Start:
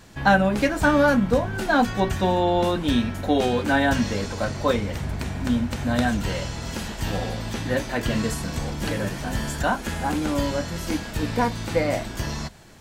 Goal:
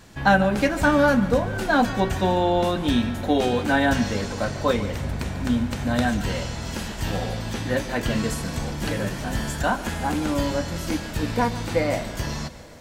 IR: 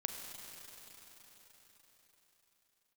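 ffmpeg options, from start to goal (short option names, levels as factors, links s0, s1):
-filter_complex "[0:a]asplit=2[s0][s1];[1:a]atrim=start_sample=2205,adelay=144[s2];[s1][s2]afir=irnorm=-1:irlink=0,volume=0.188[s3];[s0][s3]amix=inputs=2:normalize=0"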